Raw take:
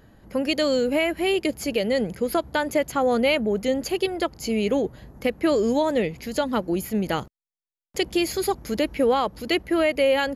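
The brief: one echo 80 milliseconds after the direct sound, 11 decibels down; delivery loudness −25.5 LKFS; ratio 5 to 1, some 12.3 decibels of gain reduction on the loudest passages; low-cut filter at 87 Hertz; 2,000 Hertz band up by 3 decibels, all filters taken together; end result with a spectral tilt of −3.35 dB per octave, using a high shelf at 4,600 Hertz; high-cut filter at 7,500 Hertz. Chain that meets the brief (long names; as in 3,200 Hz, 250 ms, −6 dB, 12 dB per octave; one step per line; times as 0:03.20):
high-pass filter 87 Hz
low-pass filter 7,500 Hz
parametric band 2,000 Hz +5.5 dB
high-shelf EQ 4,600 Hz −9 dB
downward compressor 5 to 1, threshold −31 dBFS
single-tap delay 80 ms −11 dB
level +8.5 dB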